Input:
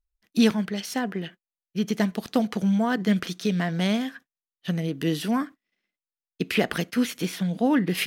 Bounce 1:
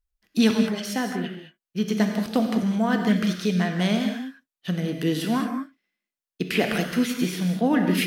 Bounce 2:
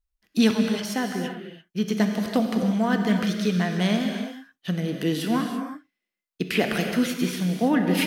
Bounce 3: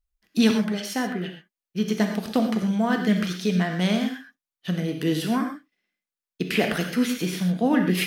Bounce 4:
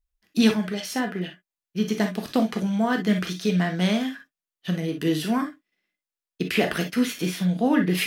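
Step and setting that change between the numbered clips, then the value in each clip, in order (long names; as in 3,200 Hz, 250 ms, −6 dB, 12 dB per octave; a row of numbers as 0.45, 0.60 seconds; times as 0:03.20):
reverb whose tail is shaped and stops, gate: 240, 360, 150, 80 milliseconds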